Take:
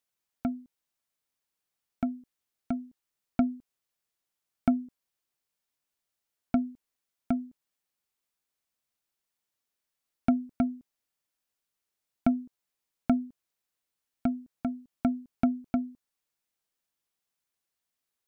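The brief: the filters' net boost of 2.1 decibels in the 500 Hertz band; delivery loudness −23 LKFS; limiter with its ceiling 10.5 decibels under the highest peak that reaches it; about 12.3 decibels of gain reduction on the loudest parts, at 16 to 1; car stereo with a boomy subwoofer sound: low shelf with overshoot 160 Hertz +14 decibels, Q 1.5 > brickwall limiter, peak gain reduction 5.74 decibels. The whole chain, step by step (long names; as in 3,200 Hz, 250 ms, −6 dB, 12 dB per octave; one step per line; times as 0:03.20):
parametric band 500 Hz +5 dB
downward compressor 16 to 1, threshold −30 dBFS
brickwall limiter −25 dBFS
low shelf with overshoot 160 Hz +14 dB, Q 1.5
level +23.5 dB
brickwall limiter −1 dBFS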